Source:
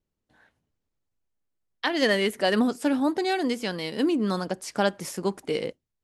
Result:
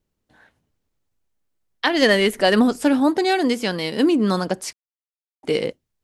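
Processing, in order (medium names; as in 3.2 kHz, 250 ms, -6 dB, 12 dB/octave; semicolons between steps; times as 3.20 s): 1.93–2.91 s: added noise brown -59 dBFS; 4.73–5.43 s: mute; trim +6.5 dB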